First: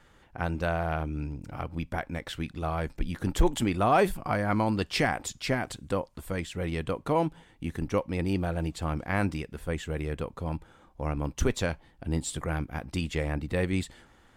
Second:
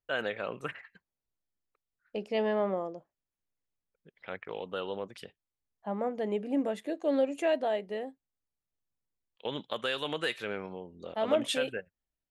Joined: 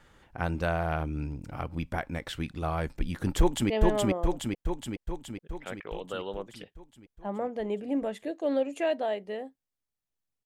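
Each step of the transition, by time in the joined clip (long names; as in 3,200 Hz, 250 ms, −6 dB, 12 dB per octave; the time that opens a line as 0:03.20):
first
0:03.39–0:03.70: delay throw 420 ms, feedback 65%, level −1 dB
0:03.70: continue with second from 0:02.32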